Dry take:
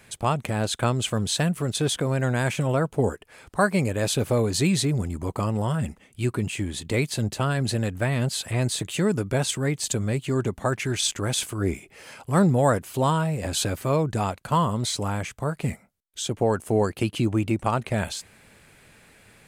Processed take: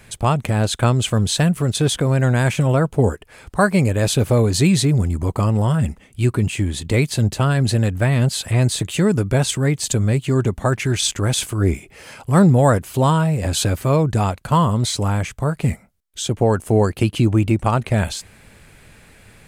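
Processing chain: bass shelf 100 Hz +11 dB; trim +4.5 dB

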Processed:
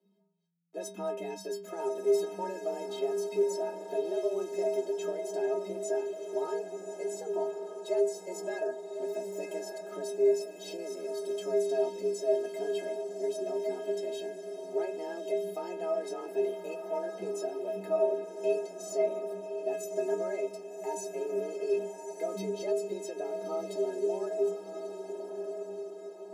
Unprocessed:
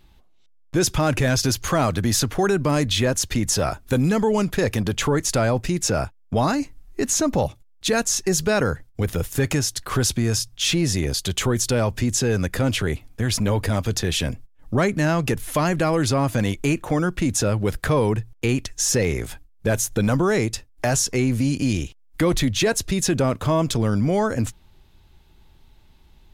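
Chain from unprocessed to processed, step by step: frequency shift +170 Hz; high-order bell 500 Hz +14.5 dB; inharmonic resonator 190 Hz, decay 0.59 s, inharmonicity 0.03; echo that smears into a reverb 1190 ms, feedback 48%, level -7 dB; trim -8 dB

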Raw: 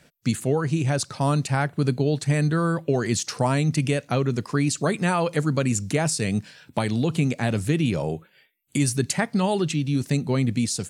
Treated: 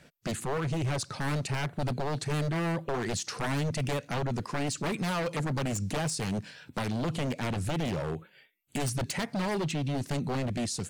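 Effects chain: treble shelf 6 kHz -6 dB; wavefolder -20.5 dBFS; peak limiter -25 dBFS, peak gain reduction 4.5 dB

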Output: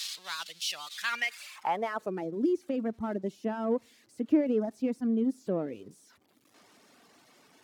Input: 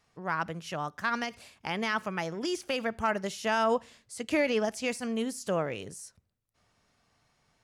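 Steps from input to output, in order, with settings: zero-crossing glitches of -26 dBFS; reverb removal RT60 1 s; waveshaping leveller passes 1; band-pass sweep 3.8 kHz -> 280 Hz, 0.91–2.26 s; trim +6 dB

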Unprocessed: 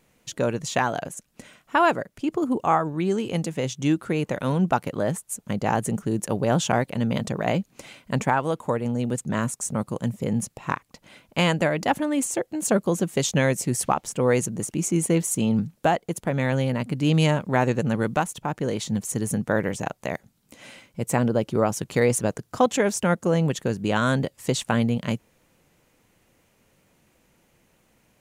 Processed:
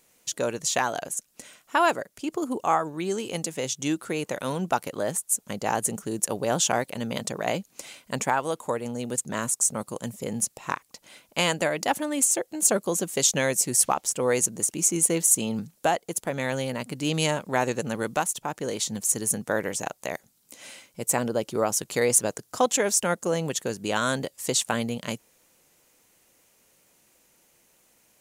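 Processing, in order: tone controls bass -9 dB, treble +10 dB; trim -2 dB

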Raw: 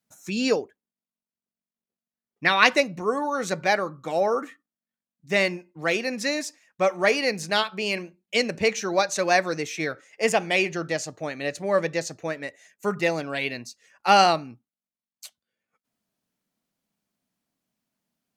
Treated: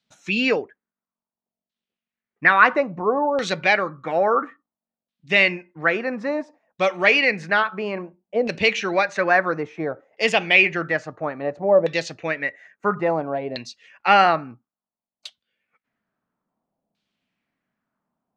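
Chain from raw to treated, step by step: treble shelf 3.9 kHz +8 dB; in parallel at -3 dB: peak limiter -15.5 dBFS, peak gain reduction 15.5 dB; on the sum: LFO low-pass saw down 0.59 Hz 630–3800 Hz; trim -2.5 dB

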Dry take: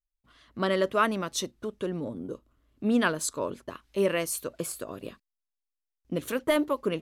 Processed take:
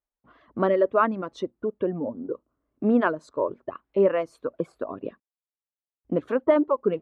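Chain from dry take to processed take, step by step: high-pass 310 Hz 6 dB/octave; reverb removal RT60 1.9 s; low-pass 1 kHz 12 dB/octave; in parallel at -2.5 dB: compression, threshold -40 dBFS, peak gain reduction 17 dB; on the sum: trim +7 dB

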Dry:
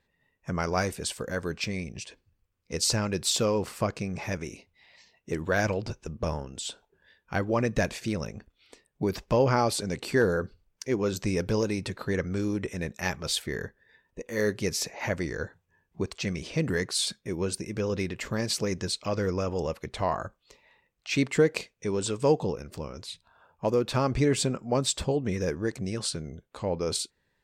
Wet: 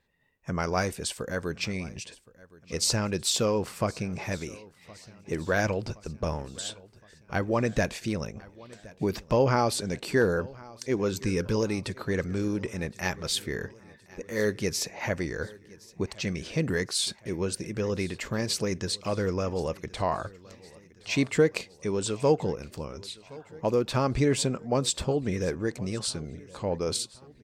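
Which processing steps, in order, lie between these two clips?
11.11–11.56 s: Butterworth band-stop 680 Hz, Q 1.9; feedback delay 1068 ms, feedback 57%, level -22 dB

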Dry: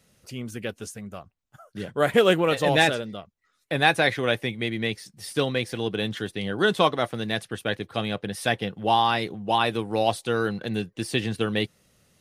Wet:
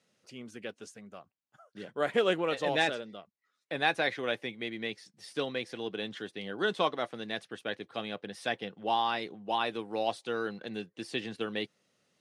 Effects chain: band-pass 220–6800 Hz; trim -8 dB

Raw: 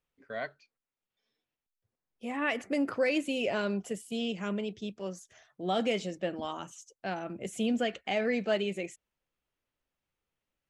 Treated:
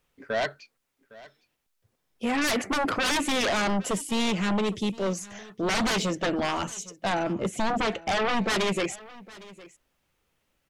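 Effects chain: 7.23–8.48 s: treble shelf 2.5 kHz -10.5 dB; sine folder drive 15 dB, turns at -16.5 dBFS; delay 809 ms -20.5 dB; trim -5.5 dB

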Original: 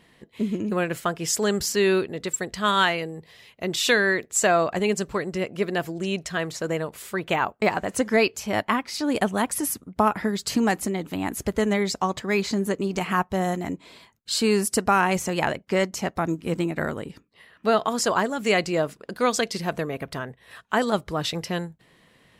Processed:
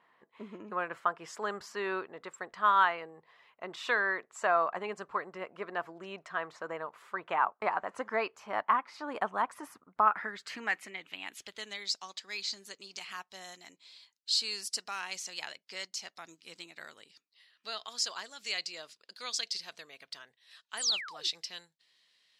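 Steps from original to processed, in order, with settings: painted sound fall, 20.77–21.28 s, 300–11000 Hz -26 dBFS; band-pass sweep 1.1 kHz -> 4.6 kHz, 9.83–11.88 s

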